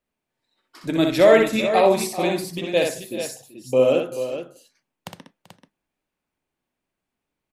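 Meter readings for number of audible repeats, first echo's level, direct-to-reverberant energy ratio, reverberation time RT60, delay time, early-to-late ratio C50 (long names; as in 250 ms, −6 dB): 3, −4.5 dB, no reverb audible, no reverb audible, 62 ms, no reverb audible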